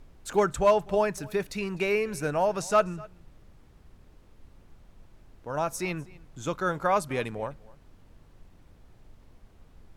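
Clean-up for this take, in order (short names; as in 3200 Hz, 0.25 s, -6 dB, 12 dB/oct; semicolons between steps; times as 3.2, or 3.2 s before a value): clip repair -13 dBFS; noise print and reduce 18 dB; inverse comb 0.251 s -23 dB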